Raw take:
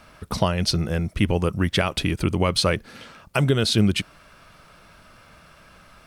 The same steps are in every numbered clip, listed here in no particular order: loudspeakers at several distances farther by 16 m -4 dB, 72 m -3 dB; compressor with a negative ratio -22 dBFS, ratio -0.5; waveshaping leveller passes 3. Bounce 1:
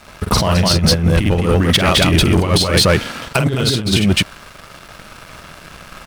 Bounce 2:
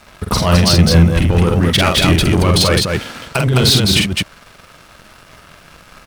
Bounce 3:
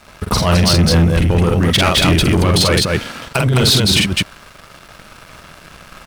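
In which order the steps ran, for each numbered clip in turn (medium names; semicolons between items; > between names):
loudspeakers at several distances > compressor with a negative ratio > waveshaping leveller; compressor with a negative ratio > waveshaping leveller > loudspeakers at several distances; compressor with a negative ratio > loudspeakers at several distances > waveshaping leveller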